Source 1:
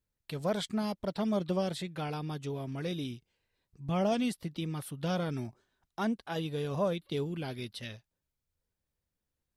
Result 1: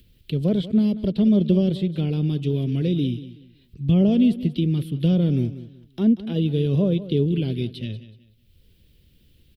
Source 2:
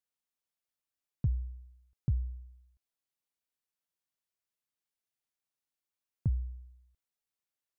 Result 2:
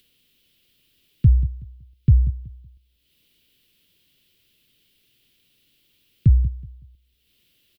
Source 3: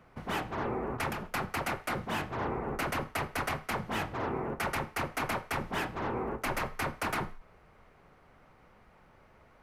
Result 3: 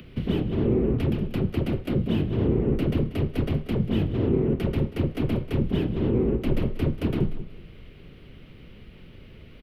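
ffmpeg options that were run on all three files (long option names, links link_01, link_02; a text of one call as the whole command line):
ffmpeg -i in.wav -filter_complex "[0:a]acrossover=split=110|950[link_01][link_02][link_03];[link_03]acompressor=threshold=-53dB:ratio=6[link_04];[link_01][link_02][link_04]amix=inputs=3:normalize=0,firequalizer=gain_entry='entry(390,0);entry(800,-17);entry(3000,11);entry(6400,-8);entry(14000,1)':delay=0.05:min_phase=1,acompressor=mode=upward:threshold=-56dB:ratio=2.5,lowshelf=frequency=440:gain=9,aecho=1:1:187|374|561:0.178|0.0498|0.0139,volume=7.5dB" out.wav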